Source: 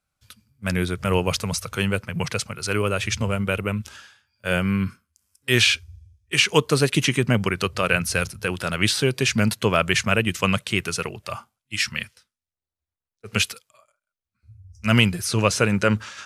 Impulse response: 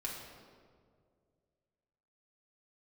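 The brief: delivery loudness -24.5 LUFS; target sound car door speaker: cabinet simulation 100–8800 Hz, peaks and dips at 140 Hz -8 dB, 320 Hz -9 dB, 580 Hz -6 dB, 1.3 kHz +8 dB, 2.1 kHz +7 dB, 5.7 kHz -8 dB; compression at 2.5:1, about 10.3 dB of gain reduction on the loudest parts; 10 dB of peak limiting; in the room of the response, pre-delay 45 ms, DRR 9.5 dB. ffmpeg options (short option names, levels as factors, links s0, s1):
-filter_complex "[0:a]acompressor=threshold=0.0398:ratio=2.5,alimiter=limit=0.106:level=0:latency=1,asplit=2[s0][s1];[1:a]atrim=start_sample=2205,adelay=45[s2];[s1][s2]afir=irnorm=-1:irlink=0,volume=0.316[s3];[s0][s3]amix=inputs=2:normalize=0,highpass=100,equalizer=f=140:t=q:w=4:g=-8,equalizer=f=320:t=q:w=4:g=-9,equalizer=f=580:t=q:w=4:g=-6,equalizer=f=1300:t=q:w=4:g=8,equalizer=f=2100:t=q:w=4:g=7,equalizer=f=5700:t=q:w=4:g=-8,lowpass=f=8800:w=0.5412,lowpass=f=8800:w=1.3066,volume=2.37"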